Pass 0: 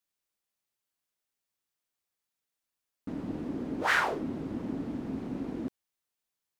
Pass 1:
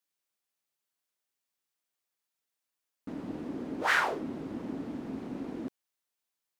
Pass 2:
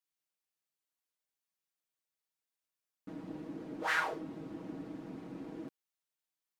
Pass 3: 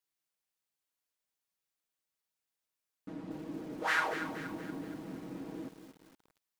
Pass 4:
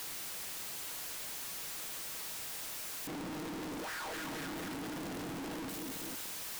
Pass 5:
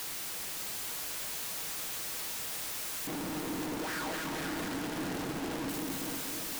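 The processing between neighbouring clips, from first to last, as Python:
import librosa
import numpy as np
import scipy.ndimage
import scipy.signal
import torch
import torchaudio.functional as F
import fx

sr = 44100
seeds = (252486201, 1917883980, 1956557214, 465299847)

y1 = fx.low_shelf(x, sr, hz=160.0, db=-9.0)
y2 = y1 + 0.65 * np.pad(y1, (int(6.3 * sr / 1000.0), 0))[:len(y1)]
y2 = y2 * librosa.db_to_amplitude(-7.5)
y3 = fx.echo_crushed(y2, sr, ms=235, feedback_pct=55, bits=9, wet_db=-9.5)
y3 = y3 * librosa.db_to_amplitude(1.5)
y4 = np.sign(y3) * np.sqrt(np.mean(np.square(y3)))
y4 = y4 * librosa.db_to_amplitude(1.5)
y5 = fx.echo_alternate(y4, sr, ms=293, hz=830.0, feedback_pct=72, wet_db=-5.0)
y5 = y5 * librosa.db_to_amplitude(3.5)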